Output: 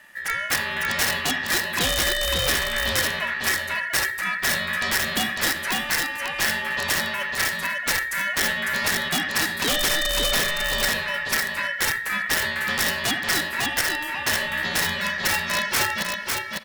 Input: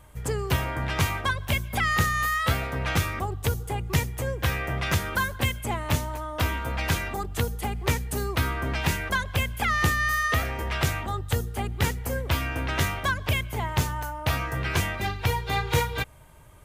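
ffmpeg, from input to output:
-filter_complex "[0:a]asplit=2[a][b];[b]adelay=80,highpass=300,lowpass=3.4k,asoftclip=type=hard:threshold=-17dB,volume=-13dB[c];[a][c]amix=inputs=2:normalize=0,aeval=exprs='val(0)*sin(2*PI*1800*n/s)':c=same,aeval=exprs='(mod(7.94*val(0)+1,2)-1)/7.94':c=same,asplit=2[d][e];[e]aecho=0:1:551:0.668[f];[d][f]amix=inputs=2:normalize=0,volume=4dB"

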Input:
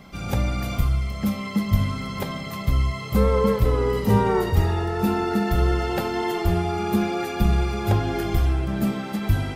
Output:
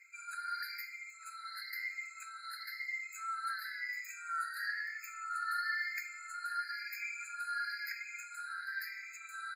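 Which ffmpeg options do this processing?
-af "afftfilt=real='re*pow(10,23/40*sin(2*PI*(0.71*log(max(b,1)*sr/1024/100)/log(2)-(0.99)*(pts-256)/sr)))':imag='im*pow(10,23/40*sin(2*PI*(0.71*log(max(b,1)*sr/1024/100)/log(2)-(0.99)*(pts-256)/sr)))':win_size=1024:overlap=0.75,firequalizer=gain_entry='entry(210,0);entry(300,-29);entry(700,-3);entry(1000,-21);entry(1500,-3);entry(2200,-11);entry(3300,-13);entry(5700,-8);entry(12000,-14)':delay=0.05:min_phase=1,afftfilt=real='re*eq(mod(floor(b*sr/1024/1300),2),1)':imag='im*eq(mod(floor(b*sr/1024/1300),2),1)':win_size=1024:overlap=0.75"

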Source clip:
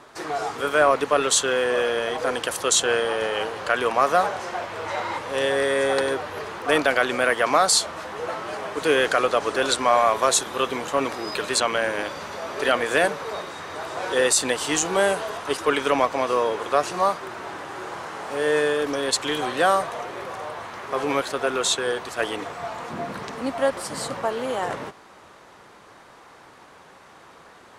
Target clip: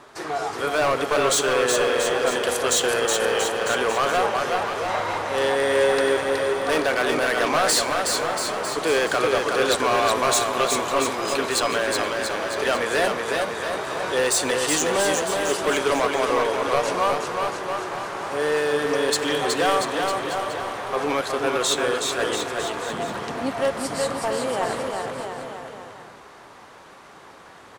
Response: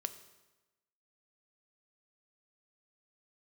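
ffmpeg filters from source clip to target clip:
-filter_complex "[0:a]volume=17.5dB,asoftclip=hard,volume=-17.5dB,aecho=1:1:370|684.5|951.8|1179|1372:0.631|0.398|0.251|0.158|0.1,asplit=2[a][b];[1:a]atrim=start_sample=2205[c];[b][c]afir=irnorm=-1:irlink=0,volume=1dB[d];[a][d]amix=inputs=2:normalize=0,volume=-5.5dB"

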